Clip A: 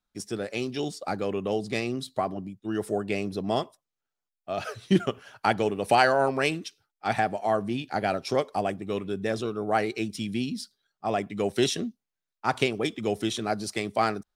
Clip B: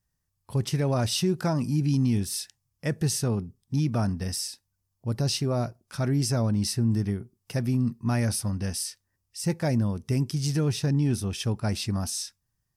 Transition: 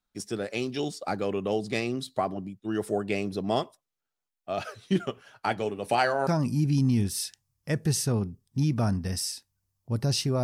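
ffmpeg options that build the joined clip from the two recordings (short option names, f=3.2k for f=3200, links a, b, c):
-filter_complex "[0:a]asettb=1/sr,asplit=3[a][b][c];[a]atrim=end=4.634[d];[b]atrim=start=4.63:end=6.27,asetpts=PTS-STARTPTS,afade=t=in:d=0.004:c=qsin,afade=t=out:st=1.636:d=0.004:c=qsin,flanger=delay=3.1:depth=6.9:regen=-66:speed=0.32:shape=triangular[e];[c]atrim=start=6.266[f];[d][e]acrossfade=d=0.004:c1=hsin:c2=qsin[g];[g][f]acrossfade=d=0.004:c1=qsin:c2=hsin,apad=whole_dur=10.43,atrim=end=10.43,atrim=end=6.272[h];[1:a]atrim=start=1.428:end=5.59[i];[h][i]acrossfade=d=0.004:c1=hsin:c2=hsin"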